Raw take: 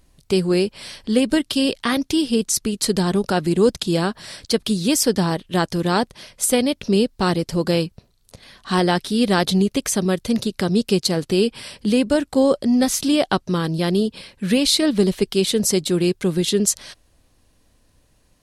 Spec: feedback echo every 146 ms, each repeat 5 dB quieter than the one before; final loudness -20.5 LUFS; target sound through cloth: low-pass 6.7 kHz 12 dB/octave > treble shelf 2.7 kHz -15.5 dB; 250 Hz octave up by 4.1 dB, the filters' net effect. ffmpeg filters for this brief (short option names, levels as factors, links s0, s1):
-af "lowpass=6700,equalizer=f=250:t=o:g=5.5,highshelf=f=2700:g=-15.5,aecho=1:1:146|292|438|584|730|876|1022:0.562|0.315|0.176|0.0988|0.0553|0.031|0.0173,volume=0.631"